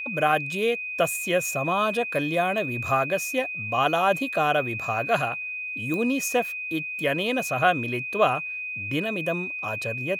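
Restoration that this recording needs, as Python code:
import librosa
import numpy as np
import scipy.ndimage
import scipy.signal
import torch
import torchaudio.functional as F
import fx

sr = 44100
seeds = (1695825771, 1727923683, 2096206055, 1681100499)

y = fx.fix_declick_ar(x, sr, threshold=10.0)
y = fx.notch(y, sr, hz=2500.0, q=30.0)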